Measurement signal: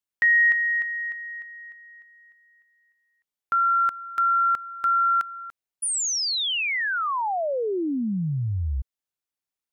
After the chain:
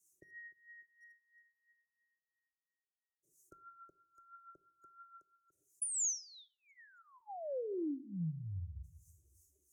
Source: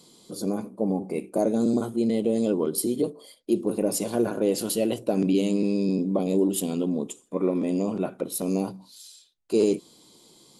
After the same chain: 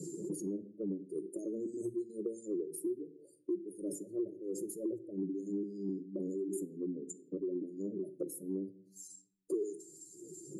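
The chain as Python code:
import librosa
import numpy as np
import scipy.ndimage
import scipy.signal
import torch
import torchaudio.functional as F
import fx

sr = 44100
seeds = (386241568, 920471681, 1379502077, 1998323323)

p1 = fx.spec_expand(x, sr, power=1.9)
p2 = fx.peak_eq(p1, sr, hz=450.0, db=-12.0, octaves=0.46)
p3 = fx.wah_lfo(p2, sr, hz=3.0, low_hz=630.0, high_hz=2300.0, q=2.3)
p4 = fx.dynamic_eq(p3, sr, hz=100.0, q=0.71, threshold_db=-57.0, ratio=4.0, max_db=-4)
p5 = fx.room_shoebox(p4, sr, seeds[0], volume_m3=450.0, walls='furnished', distance_m=0.4)
p6 = fx.rider(p5, sr, range_db=4, speed_s=0.5)
p7 = p5 + (p6 * 10.0 ** (-2.0 / 20.0))
p8 = scipy.signal.sosfilt(scipy.signal.ellip(4, 1.0, 70, [390.0, 6400.0], 'bandstop', fs=sr, output='sos'), p7)
p9 = fx.fixed_phaser(p8, sr, hz=880.0, stages=6)
p10 = fx.band_squash(p9, sr, depth_pct=100)
y = p10 * 10.0 ** (10.5 / 20.0)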